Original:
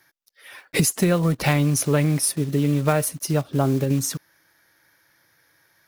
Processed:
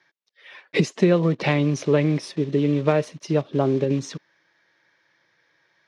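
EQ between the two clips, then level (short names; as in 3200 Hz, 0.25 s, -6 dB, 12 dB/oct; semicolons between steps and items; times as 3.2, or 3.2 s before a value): dynamic EQ 310 Hz, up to +7 dB, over -33 dBFS, Q 0.85; speaker cabinet 180–4900 Hz, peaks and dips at 270 Hz -7 dB, 760 Hz -4 dB, 1400 Hz -6 dB, 4700 Hz -5 dB; 0.0 dB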